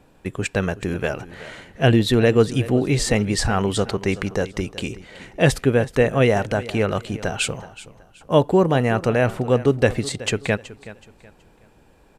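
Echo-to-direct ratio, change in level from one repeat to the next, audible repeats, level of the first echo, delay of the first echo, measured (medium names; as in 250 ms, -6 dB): -16.5 dB, -10.0 dB, 2, -17.0 dB, 374 ms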